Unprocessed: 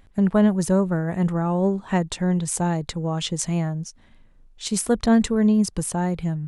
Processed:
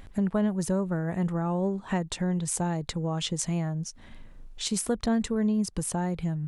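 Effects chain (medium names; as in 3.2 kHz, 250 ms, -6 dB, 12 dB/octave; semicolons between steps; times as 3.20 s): compression 2:1, threshold -43 dBFS, peak gain reduction 16.5 dB; trim +7 dB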